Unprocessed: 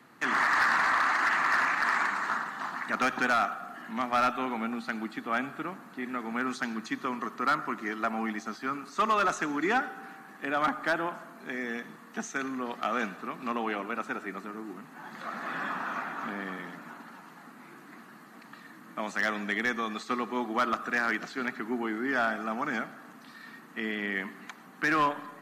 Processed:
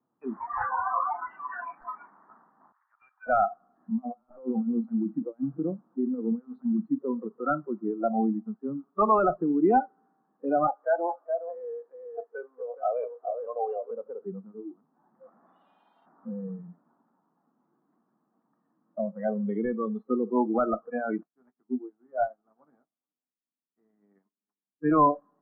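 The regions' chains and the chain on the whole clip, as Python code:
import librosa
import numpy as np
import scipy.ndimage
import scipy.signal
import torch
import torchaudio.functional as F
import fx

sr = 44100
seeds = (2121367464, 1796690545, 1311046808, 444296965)

y = fx.chain(x, sr, fx.peak_eq(hz=4000.0, db=-9.0, octaves=1.1),
    fx.env_flatten(amount_pct=50), at=(0.67, 1.3))
y = fx.chain(y, sr, fx.bessel_highpass(hz=1800.0, order=8),
    fx.peak_eq(hz=3400.0, db=-5.0, octaves=0.68),
    fx.overload_stage(gain_db=24.5), at=(2.72, 3.27))
y = fx.chain(y, sr, fx.over_compress(threshold_db=-34.0, ratio=-0.5),
    fx.echo_single(ms=252, db=-18.0), at=(3.79, 6.82))
y = fx.chain(y, sr, fx.highpass(hz=390.0, slope=24),
    fx.echo_single(ms=419, db=-4.0), at=(10.67, 13.91))
y = fx.envelope_flatten(y, sr, power=0.1, at=(15.46, 16.05), fade=0.02)
y = fx.bandpass_edges(y, sr, low_hz=660.0, high_hz=4100.0, at=(15.46, 16.05), fade=0.02)
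y = fx.room_flutter(y, sr, wall_m=9.4, rt60_s=1.1, at=(15.46, 16.05), fade=0.02)
y = fx.chain(y, sr, fx.doubler(ms=20.0, db=-7),
    fx.echo_single(ms=422, db=-17.5),
    fx.upward_expand(threshold_db=-45.0, expansion=2.5), at=(21.23, 24.9))
y = fx.noise_reduce_blind(y, sr, reduce_db=29)
y = scipy.signal.sosfilt(scipy.signal.cheby2(4, 80, 5800.0, 'lowpass', fs=sr, output='sos'), y)
y = y * 10.0 ** (8.5 / 20.0)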